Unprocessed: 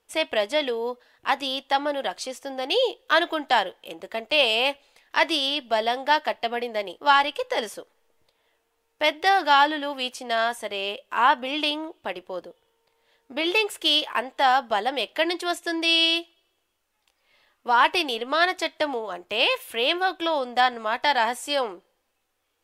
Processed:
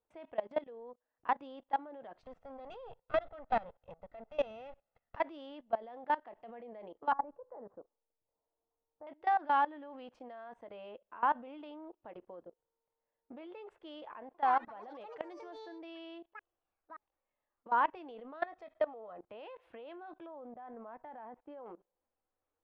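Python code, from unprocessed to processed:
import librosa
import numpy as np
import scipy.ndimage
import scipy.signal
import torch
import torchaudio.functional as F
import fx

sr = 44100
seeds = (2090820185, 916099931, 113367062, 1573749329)

y = fx.transient(x, sr, attack_db=4, sustain_db=-9, at=(0.57, 1.34))
y = fx.lower_of_two(y, sr, delay_ms=1.5, at=(2.23, 5.16))
y = fx.lowpass(y, sr, hz=1200.0, slope=24, at=(7.12, 9.07))
y = fx.echo_pitch(y, sr, ms=84, semitones=5, count=3, db_per_echo=-6.0, at=(14.26, 17.76))
y = fx.comb(y, sr, ms=1.6, depth=0.54, at=(18.45, 19.19))
y = fx.spacing_loss(y, sr, db_at_10k=42, at=(20.26, 21.66))
y = scipy.signal.sosfilt(scipy.signal.butter(2, 1100.0, 'lowpass', fs=sr, output='sos'), y)
y = fx.notch(y, sr, hz=390.0, q=12.0)
y = fx.level_steps(y, sr, step_db=21)
y = y * librosa.db_to_amplitude(-6.0)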